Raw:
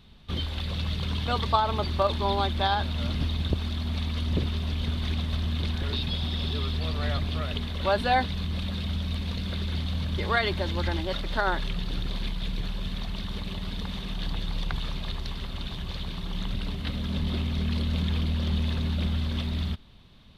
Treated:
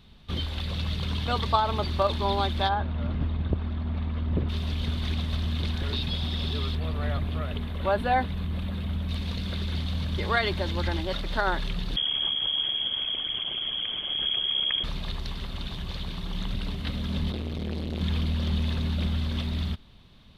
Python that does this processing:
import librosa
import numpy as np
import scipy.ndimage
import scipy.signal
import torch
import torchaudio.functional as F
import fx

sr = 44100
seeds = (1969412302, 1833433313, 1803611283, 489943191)

y = fx.lowpass(x, sr, hz=1600.0, slope=12, at=(2.68, 4.48), fade=0.02)
y = fx.peak_eq(y, sr, hz=5300.0, db=-13.5, octaves=1.4, at=(6.75, 9.09))
y = fx.freq_invert(y, sr, carrier_hz=3300, at=(11.96, 14.84))
y = fx.transformer_sat(y, sr, knee_hz=400.0, at=(17.31, 18.01))